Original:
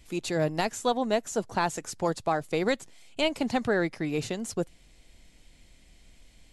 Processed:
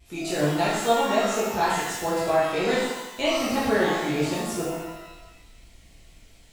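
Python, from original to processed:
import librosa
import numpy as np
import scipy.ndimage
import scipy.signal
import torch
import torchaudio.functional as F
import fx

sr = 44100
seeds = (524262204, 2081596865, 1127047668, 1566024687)

y = fx.vibrato(x, sr, rate_hz=4.3, depth_cents=99.0)
y = fx.rev_shimmer(y, sr, seeds[0], rt60_s=1.0, semitones=12, shimmer_db=-8, drr_db=-8.5)
y = y * librosa.db_to_amplitude(-5.0)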